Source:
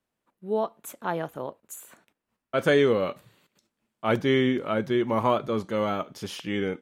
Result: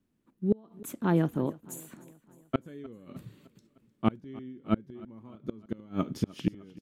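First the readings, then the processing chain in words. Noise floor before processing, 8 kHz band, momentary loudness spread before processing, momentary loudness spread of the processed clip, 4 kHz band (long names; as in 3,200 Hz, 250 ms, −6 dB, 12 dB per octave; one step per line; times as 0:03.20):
−84 dBFS, can't be measured, 15 LU, 19 LU, −14.5 dB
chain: low shelf with overshoot 420 Hz +12 dB, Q 1.5
gate with flip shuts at −11 dBFS, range −31 dB
repeating echo 305 ms, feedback 56%, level −21.5 dB
level −2 dB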